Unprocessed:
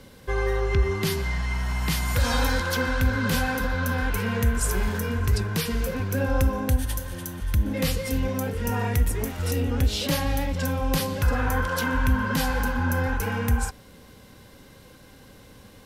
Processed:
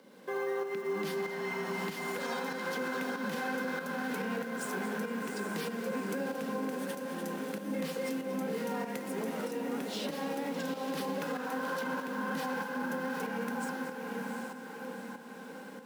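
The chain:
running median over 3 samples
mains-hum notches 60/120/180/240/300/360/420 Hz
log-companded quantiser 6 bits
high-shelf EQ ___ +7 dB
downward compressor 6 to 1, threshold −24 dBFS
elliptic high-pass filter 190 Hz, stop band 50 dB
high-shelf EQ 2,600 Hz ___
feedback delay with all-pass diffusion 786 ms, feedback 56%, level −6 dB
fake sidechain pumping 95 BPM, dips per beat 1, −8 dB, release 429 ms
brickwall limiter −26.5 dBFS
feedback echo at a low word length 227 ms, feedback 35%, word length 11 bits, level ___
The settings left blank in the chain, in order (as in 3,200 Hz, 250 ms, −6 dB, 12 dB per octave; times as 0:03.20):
8,000 Hz, −10.5 dB, −14 dB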